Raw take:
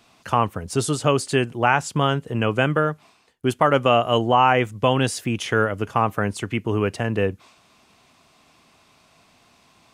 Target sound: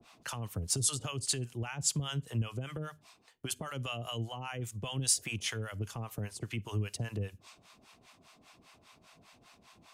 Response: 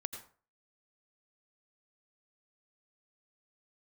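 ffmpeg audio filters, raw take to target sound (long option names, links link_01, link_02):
-filter_complex "[0:a]alimiter=limit=-14dB:level=0:latency=1:release=48,acrossover=split=630[link_01][link_02];[link_01]aeval=exprs='val(0)*(1-1/2+1/2*cos(2*PI*5*n/s))':channel_layout=same[link_03];[link_02]aeval=exprs='val(0)*(1-1/2-1/2*cos(2*PI*5*n/s))':channel_layout=same[link_04];[link_03][link_04]amix=inputs=2:normalize=0,acrossover=split=130|3000[link_05][link_06][link_07];[link_06]acompressor=threshold=-42dB:ratio=6[link_08];[link_05][link_08][link_07]amix=inputs=3:normalize=0,asplit=2[link_09][link_10];[1:a]atrim=start_sample=2205,asetrate=79380,aresample=44100[link_11];[link_10][link_11]afir=irnorm=-1:irlink=0,volume=-14dB[link_12];[link_09][link_12]amix=inputs=2:normalize=0,adynamicequalizer=threshold=0.00282:dfrequency=3800:dqfactor=0.7:tfrequency=3800:tqfactor=0.7:attack=5:release=100:ratio=0.375:range=2.5:mode=boostabove:tftype=highshelf"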